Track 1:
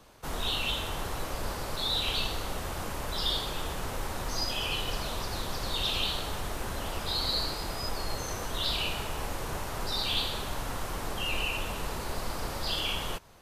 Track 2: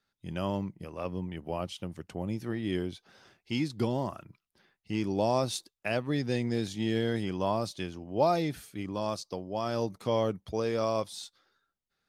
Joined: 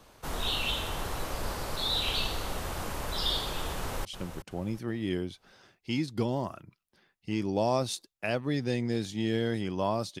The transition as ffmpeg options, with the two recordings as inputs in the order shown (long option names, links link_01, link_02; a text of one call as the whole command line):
ffmpeg -i cue0.wav -i cue1.wav -filter_complex "[0:a]apad=whole_dur=10.2,atrim=end=10.2,atrim=end=4.052[link_01];[1:a]atrim=start=1.668:end=7.82[link_02];[link_01][link_02]acrossfade=duration=0.004:curve1=hsin:curve2=hsin,asplit=2[link_03][link_04];[link_04]afade=type=in:start_time=3.76:duration=0.01,afade=type=out:start_time=4.05:duration=0.01,aecho=0:1:370|740|1110|1480:0.316228|0.11068|0.0387379|0.0135583[link_05];[link_03][link_05]amix=inputs=2:normalize=0" out.wav